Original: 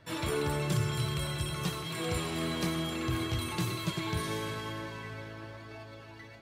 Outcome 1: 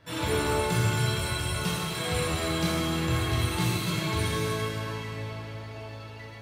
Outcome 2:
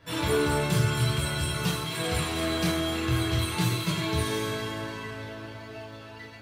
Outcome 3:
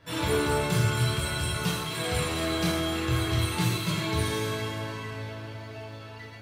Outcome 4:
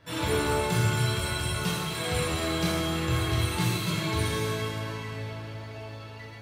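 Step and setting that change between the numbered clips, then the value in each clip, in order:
non-linear reverb, gate: 0.46, 0.11, 0.18, 0.32 s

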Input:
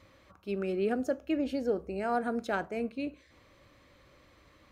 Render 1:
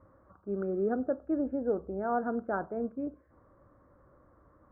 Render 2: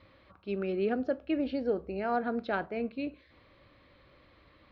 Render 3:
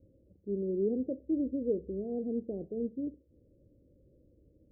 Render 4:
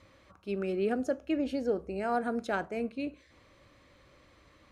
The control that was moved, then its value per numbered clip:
steep low-pass, frequency: 1500, 4600, 510, 12000 Hz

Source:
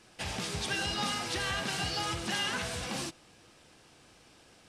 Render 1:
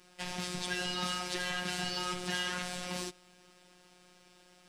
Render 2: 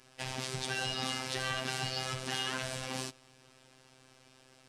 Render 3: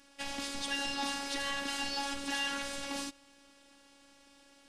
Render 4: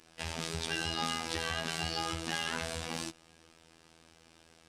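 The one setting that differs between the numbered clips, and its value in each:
robotiser, frequency: 180, 130, 280, 82 Hz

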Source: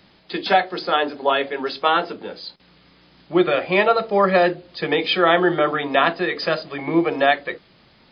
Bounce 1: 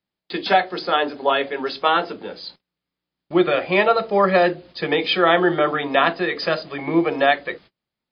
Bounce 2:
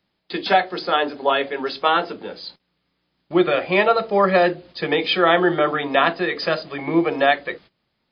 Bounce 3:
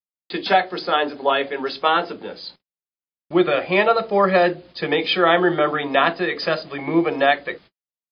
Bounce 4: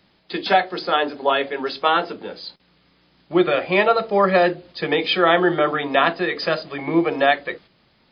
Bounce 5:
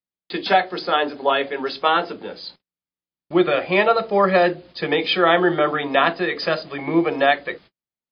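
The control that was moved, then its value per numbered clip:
gate, range: -32, -19, -59, -6, -46 dB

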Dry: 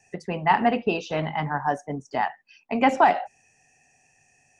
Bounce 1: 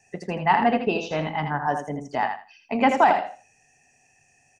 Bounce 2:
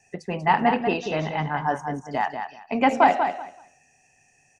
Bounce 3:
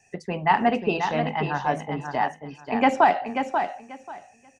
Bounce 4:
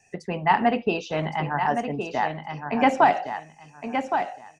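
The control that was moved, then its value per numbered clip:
feedback echo, time: 81, 190, 537, 1116 ms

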